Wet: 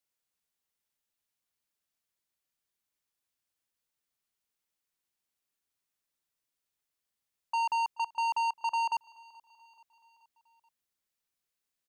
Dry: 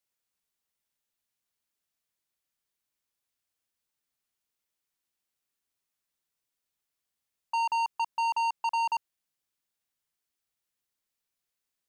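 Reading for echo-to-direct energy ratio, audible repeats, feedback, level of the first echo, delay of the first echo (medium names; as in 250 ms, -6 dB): -22.0 dB, 3, 55%, -23.5 dB, 430 ms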